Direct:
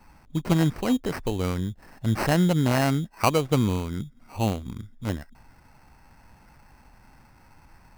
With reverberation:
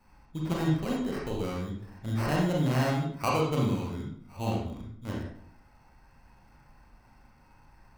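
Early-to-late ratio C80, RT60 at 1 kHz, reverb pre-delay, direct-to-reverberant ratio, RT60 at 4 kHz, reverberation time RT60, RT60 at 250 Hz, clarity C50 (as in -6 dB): 5.0 dB, 0.60 s, 29 ms, -3.5 dB, 0.45 s, 0.65 s, 0.70 s, 1.5 dB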